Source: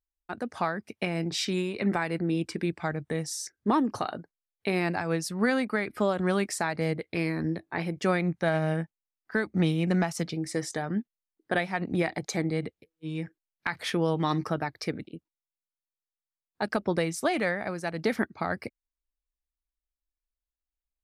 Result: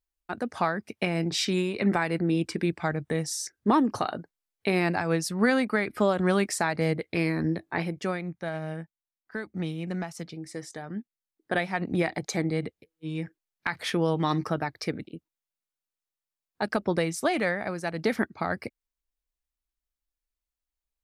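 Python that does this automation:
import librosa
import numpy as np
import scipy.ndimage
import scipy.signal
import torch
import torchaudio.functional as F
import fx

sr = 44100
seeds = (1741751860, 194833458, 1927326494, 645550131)

y = fx.gain(x, sr, db=fx.line((7.78, 2.5), (8.22, -7.0), (10.81, -7.0), (11.66, 1.0)))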